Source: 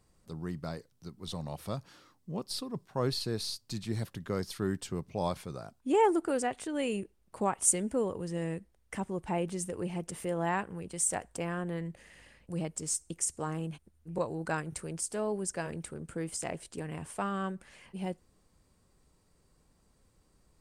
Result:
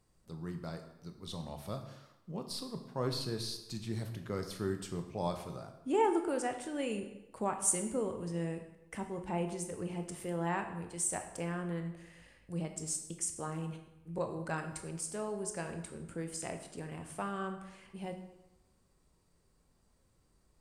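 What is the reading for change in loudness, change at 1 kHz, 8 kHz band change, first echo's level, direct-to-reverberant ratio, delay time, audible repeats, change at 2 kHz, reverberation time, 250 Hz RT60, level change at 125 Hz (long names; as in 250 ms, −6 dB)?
−3.5 dB, −3.5 dB, −3.5 dB, no echo audible, 5.5 dB, no echo audible, no echo audible, −3.5 dB, 1.0 s, 0.90 s, −2.5 dB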